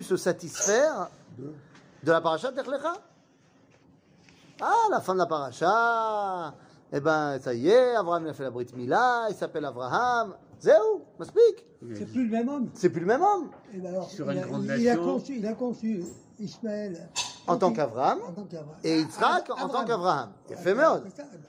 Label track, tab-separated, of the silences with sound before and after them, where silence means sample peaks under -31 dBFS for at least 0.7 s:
2.950000	4.590000	silence